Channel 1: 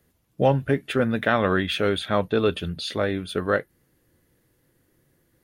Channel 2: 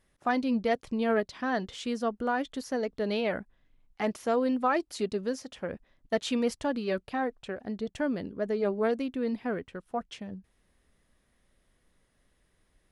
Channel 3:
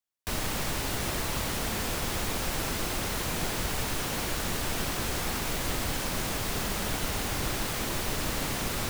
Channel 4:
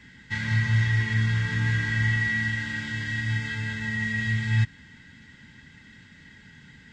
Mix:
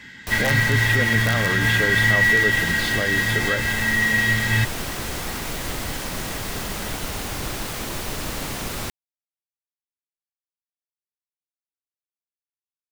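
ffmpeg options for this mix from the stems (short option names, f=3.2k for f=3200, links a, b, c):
-filter_complex "[0:a]volume=0dB[a];[2:a]volume=2dB[b];[3:a]lowshelf=f=240:g=-12,acontrast=78,volume=3dB[c];[a][b]amix=inputs=2:normalize=0,aeval=exprs='(mod(2.51*val(0)+1,2)-1)/2.51':c=same,alimiter=limit=-15.5dB:level=0:latency=1:release=57,volume=0dB[d];[c][d]amix=inputs=2:normalize=0"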